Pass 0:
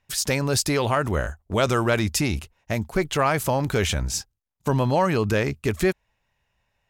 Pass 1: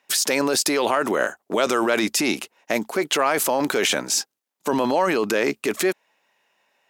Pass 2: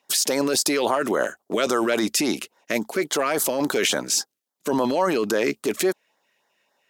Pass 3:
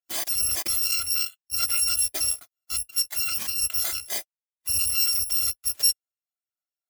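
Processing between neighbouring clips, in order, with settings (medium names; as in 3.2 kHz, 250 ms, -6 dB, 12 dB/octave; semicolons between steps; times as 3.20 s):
high-pass 260 Hz 24 dB/octave; in parallel at -0.5 dB: compressor with a negative ratio -28 dBFS, ratio -0.5
LFO notch sine 3.6 Hz 780–2700 Hz
bit-reversed sample order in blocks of 256 samples; spectral contrast expander 1.5:1; trim -6.5 dB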